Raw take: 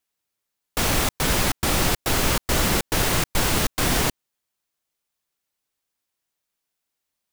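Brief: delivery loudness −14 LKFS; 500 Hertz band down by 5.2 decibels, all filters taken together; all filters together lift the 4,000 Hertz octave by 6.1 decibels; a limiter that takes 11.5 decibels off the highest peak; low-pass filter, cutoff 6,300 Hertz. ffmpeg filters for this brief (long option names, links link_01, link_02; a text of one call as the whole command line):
ffmpeg -i in.wav -af "lowpass=6300,equalizer=frequency=500:width_type=o:gain=-7,equalizer=frequency=4000:width_type=o:gain=8.5,volume=14.5dB,alimiter=limit=-4.5dB:level=0:latency=1" out.wav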